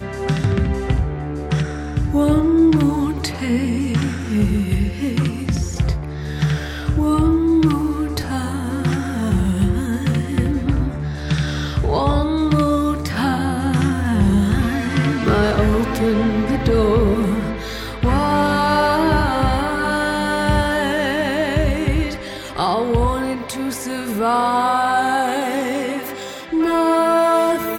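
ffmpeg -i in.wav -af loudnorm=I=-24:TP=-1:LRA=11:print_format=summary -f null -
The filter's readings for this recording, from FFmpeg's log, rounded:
Input Integrated:    -18.9 LUFS
Input True Peak:      -3.6 dBTP
Input LRA:             3.0 LU
Input Threshold:     -28.9 LUFS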